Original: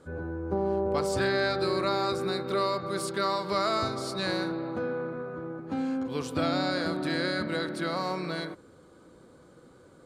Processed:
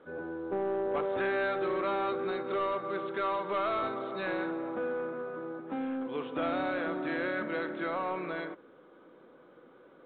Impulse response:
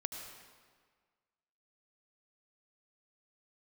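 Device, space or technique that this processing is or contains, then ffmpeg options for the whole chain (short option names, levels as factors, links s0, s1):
telephone: -af "highpass=290,lowpass=3200,asoftclip=type=tanh:threshold=0.0596" -ar 8000 -c:a pcm_mulaw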